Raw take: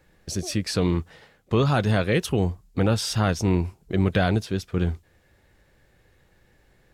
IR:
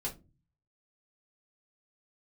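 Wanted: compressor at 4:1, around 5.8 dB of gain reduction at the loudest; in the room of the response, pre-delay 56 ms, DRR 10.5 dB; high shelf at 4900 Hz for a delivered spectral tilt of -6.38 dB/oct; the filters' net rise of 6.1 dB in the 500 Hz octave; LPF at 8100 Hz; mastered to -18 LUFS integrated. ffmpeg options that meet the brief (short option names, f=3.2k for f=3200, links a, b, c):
-filter_complex "[0:a]lowpass=8.1k,equalizer=f=500:t=o:g=7.5,highshelf=f=4.9k:g=-6,acompressor=threshold=-20dB:ratio=4,asplit=2[a][b];[1:a]atrim=start_sample=2205,adelay=56[c];[b][c]afir=irnorm=-1:irlink=0,volume=-12dB[d];[a][d]amix=inputs=2:normalize=0,volume=8dB"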